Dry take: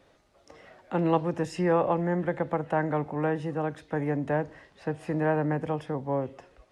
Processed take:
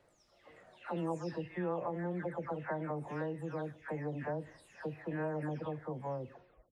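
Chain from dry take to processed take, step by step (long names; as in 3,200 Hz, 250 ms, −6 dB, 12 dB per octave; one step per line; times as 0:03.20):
every frequency bin delayed by itself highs early, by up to 388 ms
downward compressor 2 to 1, threshold −30 dBFS, peak gain reduction 7 dB
level −6.5 dB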